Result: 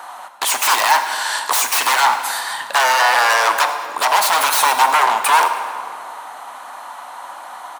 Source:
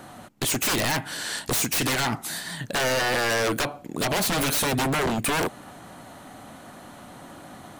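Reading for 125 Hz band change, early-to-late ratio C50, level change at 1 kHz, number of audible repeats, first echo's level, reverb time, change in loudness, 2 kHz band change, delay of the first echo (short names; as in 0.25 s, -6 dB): under -20 dB, 8.0 dB, +16.0 dB, 2, -17.0 dB, 2.4 s, +9.5 dB, +10.0 dB, 0.106 s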